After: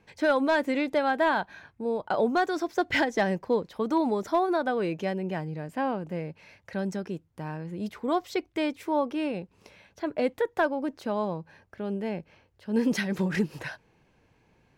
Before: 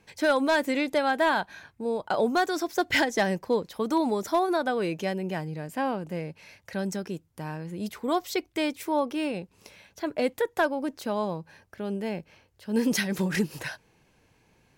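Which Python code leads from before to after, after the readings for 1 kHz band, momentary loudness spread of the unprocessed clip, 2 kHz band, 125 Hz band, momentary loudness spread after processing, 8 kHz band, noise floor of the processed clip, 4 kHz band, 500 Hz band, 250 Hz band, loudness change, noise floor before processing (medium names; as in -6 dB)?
-0.5 dB, 13 LU, -1.5 dB, 0.0 dB, 13 LU, -8.5 dB, -66 dBFS, -4.5 dB, 0.0 dB, 0.0 dB, -0.5 dB, -65 dBFS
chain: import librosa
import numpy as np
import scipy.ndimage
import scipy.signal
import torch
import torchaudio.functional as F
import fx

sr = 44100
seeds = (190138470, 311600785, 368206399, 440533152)

y = fx.lowpass(x, sr, hz=2600.0, slope=6)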